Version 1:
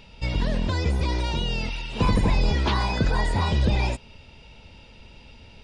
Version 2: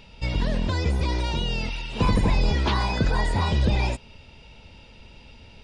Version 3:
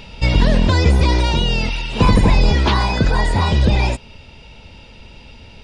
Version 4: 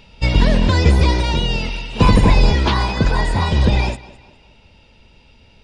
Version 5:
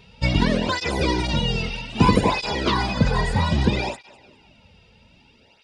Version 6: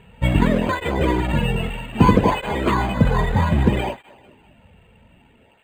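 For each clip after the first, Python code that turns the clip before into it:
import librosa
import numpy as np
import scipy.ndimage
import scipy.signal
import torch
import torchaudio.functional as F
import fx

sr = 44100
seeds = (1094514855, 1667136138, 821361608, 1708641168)

y1 = x
y2 = fx.rider(y1, sr, range_db=10, speed_s=2.0)
y2 = y2 * 10.0 ** (8.0 / 20.0)
y3 = fx.echo_tape(y2, sr, ms=203, feedback_pct=44, wet_db=-10.5, lp_hz=5500.0, drive_db=2.0, wow_cents=30)
y3 = fx.upward_expand(y3, sr, threshold_db=-30.0, expansion=1.5)
y3 = y3 * 10.0 ** (1.5 / 20.0)
y4 = fx.flanger_cancel(y3, sr, hz=0.62, depth_ms=3.6)
y5 = scipy.signal.sosfilt(scipy.signal.bessel(2, 4500.0, 'lowpass', norm='mag', fs=sr, output='sos'), y4)
y5 = np.interp(np.arange(len(y5)), np.arange(len(y5))[::8], y5[::8])
y5 = y5 * 10.0 ** (3.0 / 20.0)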